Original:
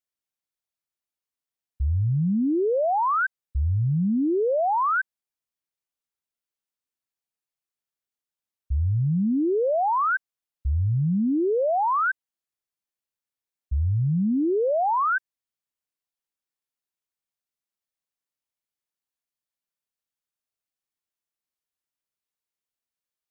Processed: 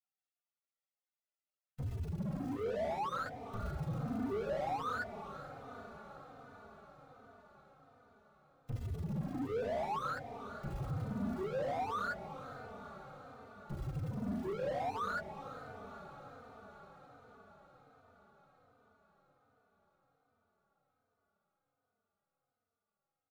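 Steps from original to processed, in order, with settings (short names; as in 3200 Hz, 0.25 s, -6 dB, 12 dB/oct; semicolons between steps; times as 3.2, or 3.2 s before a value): spectral gate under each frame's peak -20 dB weak; notches 60/120/180/240/300/360/420/480/540 Hz; comb 1.5 ms, depth 97%; sample leveller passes 3; limiter -41.5 dBFS, peak gain reduction 4 dB; overdrive pedal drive 31 dB, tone 1300 Hz, clips at -41 dBFS; diffused feedback echo 0.462 s, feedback 70%, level -11.5 dB; endless flanger 3.2 ms -1.3 Hz; gain +11.5 dB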